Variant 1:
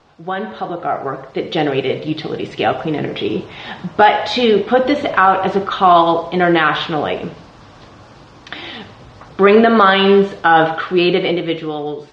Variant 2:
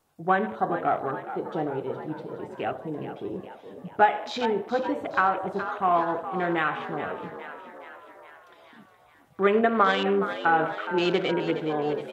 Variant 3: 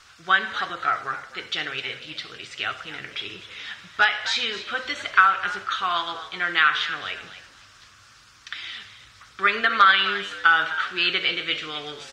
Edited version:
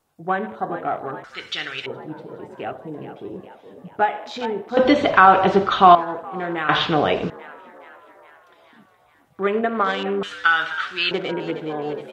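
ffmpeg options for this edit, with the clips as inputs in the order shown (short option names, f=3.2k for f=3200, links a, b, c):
-filter_complex "[2:a]asplit=2[a][b];[0:a]asplit=2[c][d];[1:a]asplit=5[e][f][g][h][i];[e]atrim=end=1.242[j];[a]atrim=start=1.238:end=1.862[k];[f]atrim=start=1.858:end=4.772[l];[c]atrim=start=4.768:end=5.952[m];[g]atrim=start=5.948:end=6.692[n];[d]atrim=start=6.688:end=7.302[o];[h]atrim=start=7.298:end=10.232[p];[b]atrim=start=10.228:end=11.112[q];[i]atrim=start=11.108[r];[j][k]acrossfade=d=0.004:c1=hsin:c2=hsin[s];[s][l]acrossfade=d=0.004:c1=hsin:c2=hsin[t];[t][m]acrossfade=d=0.004:c1=hsin:c2=hsin[u];[u][n]acrossfade=d=0.004:c1=hsin:c2=hsin[v];[v][o]acrossfade=d=0.004:c1=hsin:c2=hsin[w];[w][p]acrossfade=d=0.004:c1=hsin:c2=hsin[x];[x][q]acrossfade=d=0.004:c1=hsin:c2=hsin[y];[y][r]acrossfade=d=0.004:c1=hsin:c2=hsin"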